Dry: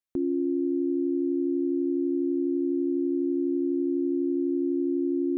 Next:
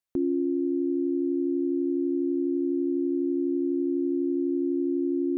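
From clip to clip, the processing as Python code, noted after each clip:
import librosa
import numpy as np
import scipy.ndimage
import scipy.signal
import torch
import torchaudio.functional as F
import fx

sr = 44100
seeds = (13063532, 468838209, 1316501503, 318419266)

y = fx.rider(x, sr, range_db=10, speed_s=0.5)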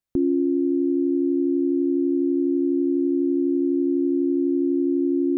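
y = fx.low_shelf(x, sr, hz=280.0, db=11.0)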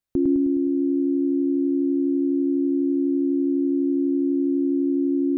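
y = fx.echo_feedback(x, sr, ms=104, feedback_pct=58, wet_db=-4.5)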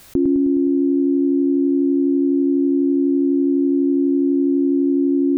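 y = fx.env_flatten(x, sr, amount_pct=70)
y = y * 10.0 ** (2.5 / 20.0)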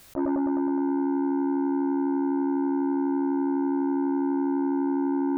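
y = fx.transformer_sat(x, sr, knee_hz=590.0)
y = y * 10.0 ** (-6.5 / 20.0)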